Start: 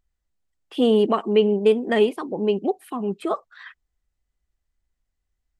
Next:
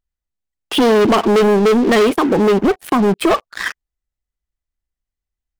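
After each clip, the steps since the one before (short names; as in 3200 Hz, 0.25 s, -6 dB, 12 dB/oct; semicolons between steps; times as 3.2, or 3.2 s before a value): sample leveller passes 5; compressor 2:1, threshold -18 dBFS, peak gain reduction 5.5 dB; gain +3 dB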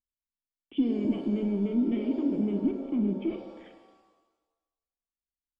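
vocal tract filter i; high shelf 2600 Hz -11.5 dB; shimmer reverb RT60 1.2 s, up +7 st, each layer -8 dB, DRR 5.5 dB; gain -7.5 dB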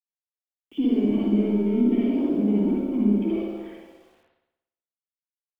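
bit-crush 11-bit; reverb, pre-delay 58 ms, DRR -4.5 dB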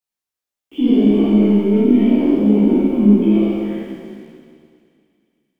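spectral trails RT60 2.22 s; chorus voices 2, 1.4 Hz, delay 16 ms, depth 3 ms; thin delay 0.114 s, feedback 81%, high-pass 2300 Hz, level -19 dB; gain +8.5 dB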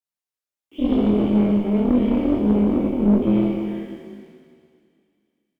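tube stage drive 11 dB, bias 0.75; doubler 24 ms -4 dB; gain -3 dB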